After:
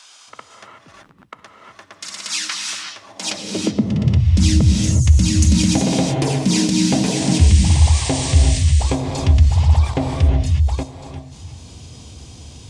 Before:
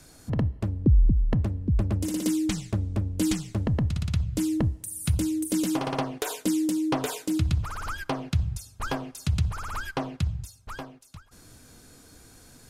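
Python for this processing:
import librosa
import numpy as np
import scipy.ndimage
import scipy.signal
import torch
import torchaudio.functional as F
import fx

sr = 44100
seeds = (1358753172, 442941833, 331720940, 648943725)

p1 = fx.high_shelf(x, sr, hz=11000.0, db=-5.0)
p2 = fx.formant_shift(p1, sr, semitones=-6)
p3 = fx.spec_paint(p2, sr, seeds[0], shape='noise', start_s=7.15, length_s=1.43, low_hz=1600.0, high_hz=9300.0, level_db=-38.0)
p4 = fx.peak_eq(p3, sr, hz=1400.0, db=-8.5, octaves=1.0)
p5 = fx.rev_gated(p4, sr, seeds[1], gate_ms=400, shape='rising', drr_db=2.0)
p6 = fx.level_steps(p5, sr, step_db=19)
p7 = p5 + F.gain(torch.from_numpy(p6), 2.5).numpy()
p8 = fx.filter_sweep_highpass(p7, sr, from_hz=1300.0, to_hz=67.0, start_s=2.98, end_s=4.41, q=2.7)
y = F.gain(torch.from_numpy(p8), 6.0).numpy()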